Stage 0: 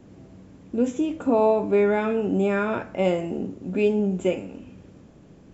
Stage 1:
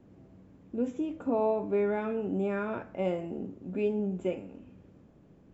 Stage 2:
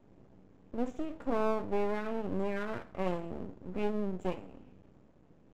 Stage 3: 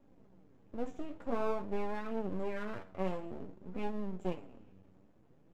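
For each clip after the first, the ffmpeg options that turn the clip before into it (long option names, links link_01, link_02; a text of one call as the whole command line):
ffmpeg -i in.wav -af "highshelf=frequency=3400:gain=-11,volume=-8dB" out.wav
ffmpeg -i in.wav -af "aeval=exprs='max(val(0),0)':channel_layout=same" out.wav
ffmpeg -i in.wav -af "flanger=delay=3.6:depth=7.1:regen=41:speed=0.51:shape=sinusoidal" out.wav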